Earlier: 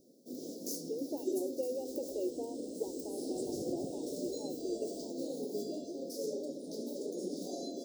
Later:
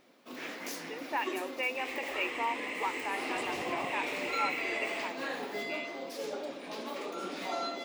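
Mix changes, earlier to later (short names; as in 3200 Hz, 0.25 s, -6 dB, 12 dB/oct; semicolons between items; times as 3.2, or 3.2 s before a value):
speech -7.0 dB; first sound -3.0 dB; master: remove inverse Chebyshev band-stop 1100–2500 Hz, stop band 60 dB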